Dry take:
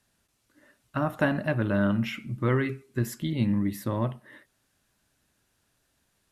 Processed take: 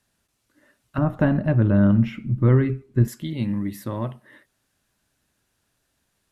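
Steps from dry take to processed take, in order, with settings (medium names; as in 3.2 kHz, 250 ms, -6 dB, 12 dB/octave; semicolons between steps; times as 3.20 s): 0.98–3.08 s: tilt EQ -3.5 dB/octave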